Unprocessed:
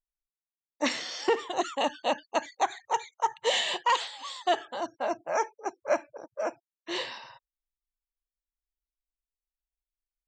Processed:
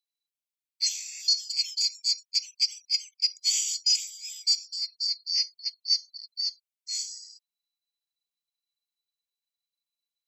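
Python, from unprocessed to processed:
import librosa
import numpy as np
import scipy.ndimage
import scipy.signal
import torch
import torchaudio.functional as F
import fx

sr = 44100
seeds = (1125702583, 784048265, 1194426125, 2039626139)

y = fx.band_swap(x, sr, width_hz=4000)
y = scipy.signal.sosfilt(scipy.signal.butter(16, 2100.0, 'highpass', fs=sr, output='sos'), y)
y = y * librosa.db_to_amplitude(1.0)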